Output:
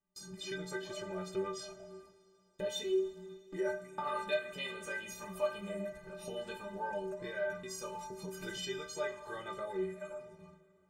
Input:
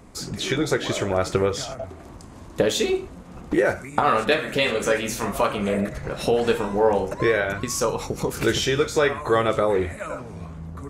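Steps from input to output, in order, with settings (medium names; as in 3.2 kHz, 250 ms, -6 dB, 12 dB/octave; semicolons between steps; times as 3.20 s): inharmonic resonator 180 Hz, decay 0.41 s, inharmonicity 0.03; gate with hold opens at -42 dBFS; two-slope reverb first 0.25 s, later 3.2 s, from -18 dB, DRR 8.5 dB; trim -4.5 dB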